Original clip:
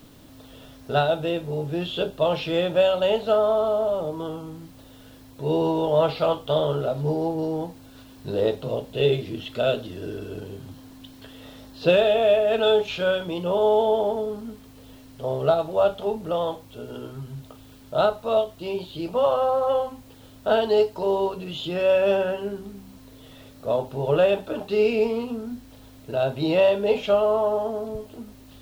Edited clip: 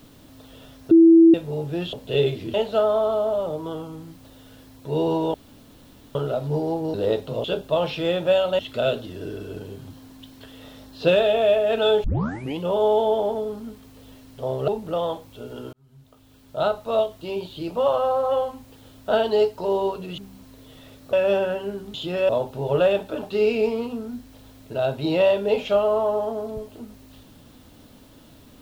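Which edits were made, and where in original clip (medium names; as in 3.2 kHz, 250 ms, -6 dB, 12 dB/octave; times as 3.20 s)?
0.91–1.34 s: bleep 330 Hz -8 dBFS
1.93–3.08 s: swap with 8.79–9.40 s
5.88–6.69 s: room tone
7.48–8.29 s: delete
12.85 s: tape start 0.55 s
15.49–16.06 s: delete
17.11–18.28 s: fade in
21.56–21.91 s: swap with 22.72–23.67 s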